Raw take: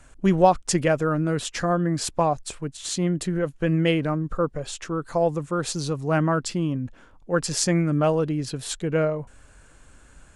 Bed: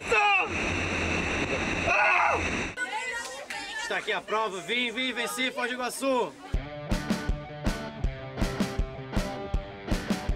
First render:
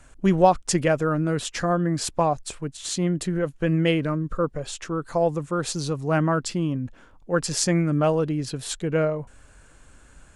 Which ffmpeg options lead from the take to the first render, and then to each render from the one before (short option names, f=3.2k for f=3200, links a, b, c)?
-filter_complex "[0:a]asettb=1/sr,asplit=3[a][b][c];[a]atrim=end=4.014[d];[b]atrim=start=4.01:end=4.44,asetpts=PTS-STARTPTS,afade=t=in:d=0.004:c=qsin,afade=t=out:st=0.426:d=0.004:c=qsin,equalizer=f=780:t=o:w=0.23:g=-12.5[e];[c]atrim=start=4.436[f];[d][e]acrossfade=d=0.004:c1=hsin:c2=qsin[g];[g][f]acrossfade=d=0.004:c1=qsin:c2=hsin"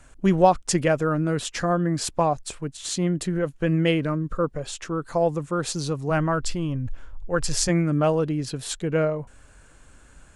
-filter_complex "[0:a]asplit=3[a][b][c];[a]afade=t=out:st=6.09:d=0.02[d];[b]asubboost=boost=10.5:cutoff=63,afade=t=in:st=6.09:d=0.02,afade=t=out:st=7.68:d=0.02[e];[c]afade=t=in:st=7.68:d=0.02[f];[d][e][f]amix=inputs=3:normalize=0"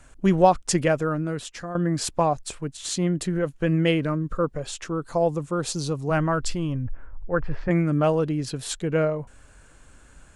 -filter_complex "[0:a]asettb=1/sr,asplit=3[a][b][c];[a]atrim=end=4.874[d];[b]atrim=start=4.87:end=6.09,asetpts=PTS-STARTPTS,afade=t=in:d=0.004:c=qsin,afade=t=out:st=1.216:d=0.004:c=qsin,equalizer=f=1.8k:w=1.5:g=-4.5[e];[c]atrim=start=6.086[f];[d][e]acrossfade=d=0.004:c1=hsin:c2=qsin[g];[g][f]acrossfade=d=0.004:c1=qsin:c2=hsin,asettb=1/sr,asplit=3[h][i][j];[h]atrim=end=6.844[k];[i]atrim=start=6.84:end=7.71,asetpts=PTS-STARTPTS,afade=t=in:d=0.004:c=qsin,afade=t=out:st=0.866:d=0.004:c=qsin,lowpass=f=2k:w=0.5412,lowpass=f=2k:w=1.3066[l];[j]atrim=start=7.706[m];[k][l]acrossfade=d=0.004:c1=hsin:c2=qsin[n];[n][m]acrossfade=d=0.004:c1=qsin:c2=hsin,asplit=2[o][p];[o]atrim=end=1.75,asetpts=PTS-STARTPTS,afade=t=out:st=0.85:d=0.9:silence=0.237137[q];[p]atrim=start=1.75,asetpts=PTS-STARTPTS,afade=t=in:d=0.004:c=hsin:silence=0.237137[r];[q][r]concat=n=2:v=0:a=1"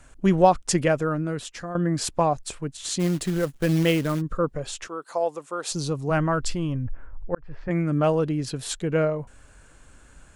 -filter_complex "[0:a]asplit=3[a][b][c];[a]afade=t=out:st=2.99:d=0.02[d];[b]acrusher=bits=4:mode=log:mix=0:aa=0.000001,afade=t=in:st=2.99:d=0.02,afade=t=out:st=4.2:d=0.02[e];[c]afade=t=in:st=4.2:d=0.02[f];[d][e][f]amix=inputs=3:normalize=0,asettb=1/sr,asplit=3[g][h][i];[g]atrim=end=4.874[j];[h]atrim=start=4.87:end=5.72,asetpts=PTS-STARTPTS,afade=t=in:d=0.004:c=qsin,afade=t=out:st=0.846:d=0.004:c=qsin,highpass=540[k];[i]atrim=start=5.716[l];[j][k]acrossfade=d=0.004:c1=hsin:c2=qsin[m];[m][l]acrossfade=d=0.004:c1=qsin:c2=hsin,asplit=2[n][o];[n]atrim=end=7.35,asetpts=PTS-STARTPTS,afade=t=out:st=7.346:d=0.004:c=hsin[p];[o]atrim=start=7.35,asetpts=PTS-STARTPTS,afade=t=in:d=0.83:c=qsin[q];[p][q]concat=n=2:v=0:a=1"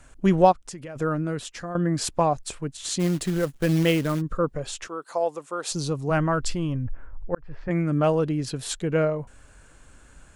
-filter_complex "[0:a]asplit=3[a][b][c];[a]afade=t=out:st=0.51:d=0.02[d];[b]acompressor=threshold=-38dB:ratio=4:attack=3.2:release=140:knee=1:detection=peak,afade=t=in:st=0.51:d=0.02,afade=t=out:st=0.95:d=0.02[e];[c]afade=t=in:st=0.95:d=0.02[f];[d][e][f]amix=inputs=3:normalize=0"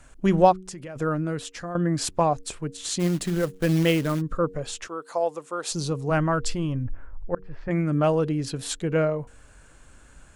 -af "bandreject=f=93.35:t=h:w=4,bandreject=f=186.7:t=h:w=4,bandreject=f=280.05:t=h:w=4,bandreject=f=373.4:t=h:w=4,bandreject=f=466.75:t=h:w=4"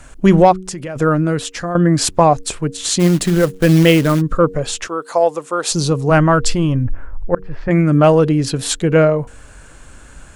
-af "acontrast=30,alimiter=level_in=6dB:limit=-1dB:release=50:level=0:latency=1"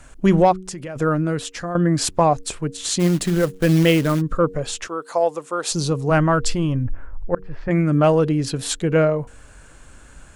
-af "volume=-5dB"